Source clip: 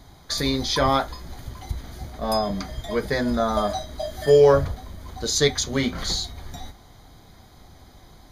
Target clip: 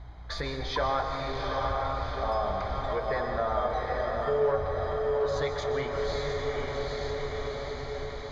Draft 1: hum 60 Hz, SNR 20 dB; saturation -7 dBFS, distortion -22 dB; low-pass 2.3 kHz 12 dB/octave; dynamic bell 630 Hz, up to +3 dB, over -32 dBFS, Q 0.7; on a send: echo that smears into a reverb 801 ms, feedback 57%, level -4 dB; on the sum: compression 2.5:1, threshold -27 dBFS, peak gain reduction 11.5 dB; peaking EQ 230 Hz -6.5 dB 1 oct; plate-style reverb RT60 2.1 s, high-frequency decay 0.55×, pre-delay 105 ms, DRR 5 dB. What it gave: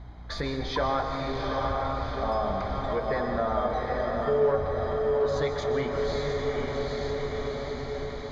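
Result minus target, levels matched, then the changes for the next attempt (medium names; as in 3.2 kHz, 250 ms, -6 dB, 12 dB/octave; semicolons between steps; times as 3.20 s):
250 Hz band +5.0 dB
change: peaking EQ 230 Hz -16 dB 1 oct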